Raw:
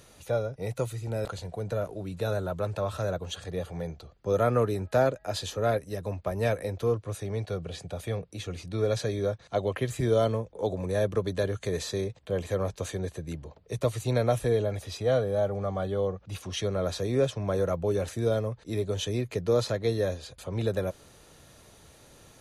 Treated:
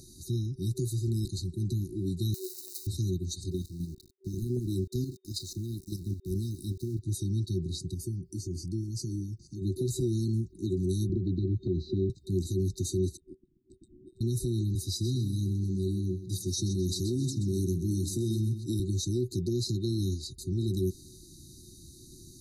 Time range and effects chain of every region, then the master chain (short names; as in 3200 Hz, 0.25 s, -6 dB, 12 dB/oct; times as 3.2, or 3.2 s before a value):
2.34–2.87 switching spikes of -27.5 dBFS + steep high-pass 400 Hz 48 dB/oct + compressor 3:1, threshold -34 dBFS
3.51–6.99 level quantiser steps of 11 dB + sample gate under -50.5 dBFS
7.94–9.62 compressor 2:1, threshold -37 dBFS + Butterworth band-stop 3900 Hz, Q 4
11.09–12.1 LPF 2600 Hz 24 dB/oct + three-band squash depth 100%
13.17–14.21 inverted band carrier 3100 Hz + three-band squash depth 100%
14.75–18.8 HPF 75 Hz 24 dB/oct + high shelf 5300 Hz +5.5 dB + feedback echo 0.128 s, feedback 37%, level -12 dB
whole clip: FFT band-reject 380–3700 Hz; limiter -28 dBFS; band shelf 530 Hz +9 dB 1.1 oct; gain +5 dB